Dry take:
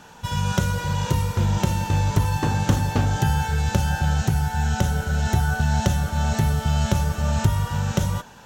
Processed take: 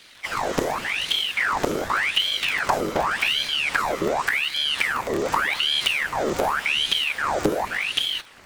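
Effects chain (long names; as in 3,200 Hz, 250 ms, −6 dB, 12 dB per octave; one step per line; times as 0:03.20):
sub-harmonics by changed cycles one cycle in 2, inverted
ring modulator whose carrier an LFO sweeps 1,800 Hz, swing 80%, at 0.87 Hz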